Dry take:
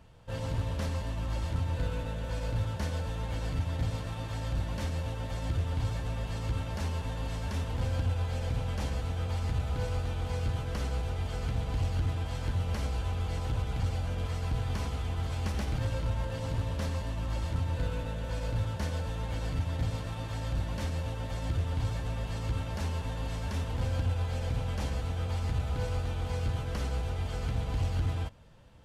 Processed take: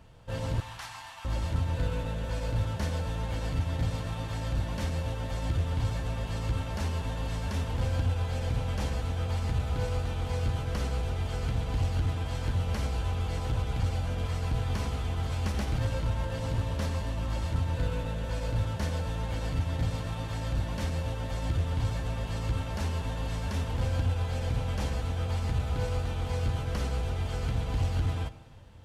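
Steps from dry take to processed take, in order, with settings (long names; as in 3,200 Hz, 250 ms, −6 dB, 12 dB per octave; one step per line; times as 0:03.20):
0:00.60–0:01.25: elliptic high-pass filter 760 Hz
dense smooth reverb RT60 2.1 s, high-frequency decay 1×, DRR 15.5 dB
level +2 dB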